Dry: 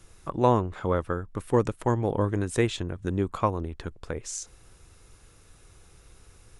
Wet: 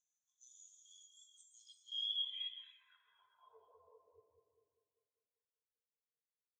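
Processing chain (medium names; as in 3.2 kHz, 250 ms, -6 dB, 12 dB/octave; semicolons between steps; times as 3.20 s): spectral levelling over time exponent 0.2; gate -18 dBFS, range -17 dB; spectral noise reduction 14 dB; amplifier tone stack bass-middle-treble 10-0-10; reverse; compression 6:1, threshold -43 dBFS, peak gain reduction 16.5 dB; reverse; resonant high shelf 2.4 kHz +8 dB, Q 3; peak limiter -31 dBFS, peak gain reduction 11 dB; integer overflow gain 32.5 dB; band-pass sweep 6.5 kHz -> 290 Hz, 1.41–4.19 s; on a send: bucket-brigade echo 197 ms, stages 2048, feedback 76%, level -3.5 dB; on the sum: gated-style reverb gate 500 ms flat, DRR -2 dB; spectral contrast expander 2.5:1; trim +4.5 dB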